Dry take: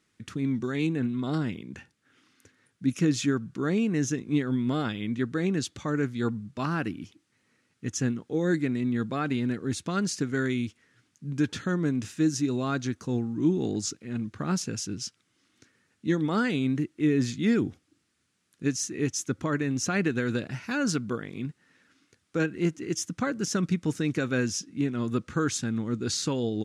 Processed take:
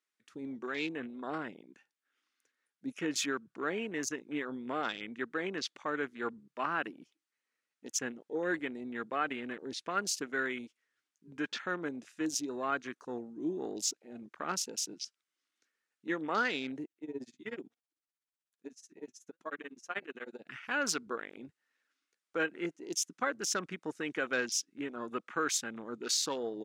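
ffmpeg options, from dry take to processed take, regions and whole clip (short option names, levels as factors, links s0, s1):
-filter_complex "[0:a]asettb=1/sr,asplit=3[s0][s1][s2];[s0]atrim=end=16.854[s3];[s1]atrim=start=16.85:end=20.47,asetpts=PTS-STARTPTS,afade=t=in:d=0.004:c=qsin,afade=t=out:st=3.616:d=0.004:c=qsin,flanger=delay=4.2:depth=3.8:regen=69:speed=1.1:shape=sinusoidal,tremolo=f=16:d=0.88[s4];[s2]atrim=start=20.466[s5];[s3][s4]acrossfade=d=0.004:c1=hsin:c2=qsin[s6];[s6][s5]acrossfade=d=0.004:c1=qsin:c2=hsin,highpass=560,afwtdn=0.00794"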